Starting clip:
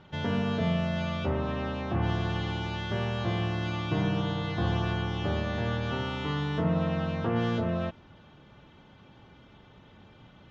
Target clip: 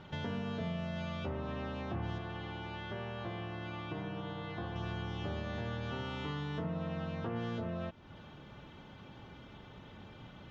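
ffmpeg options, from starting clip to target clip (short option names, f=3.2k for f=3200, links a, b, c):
-filter_complex "[0:a]acompressor=threshold=-43dB:ratio=2.5,asettb=1/sr,asplit=3[a][b][c];[a]atrim=end=2.184[d];[b]atrim=start=2.18:end=4.76,asetpts=PTS-STARTPTS,afade=t=in:d=0.004:c=qsin,afade=t=out:st=2.576:d=0.004:c=qsin,bass=f=250:g=-5,treble=f=4k:g=-11[e];[c]atrim=start=4.756[f];[d][e]acrossfade=d=0.004:c1=hsin:c2=qsin[g];[g][f]acrossfade=d=0.004:c1=qsin:c2=hsin,volume=2dB"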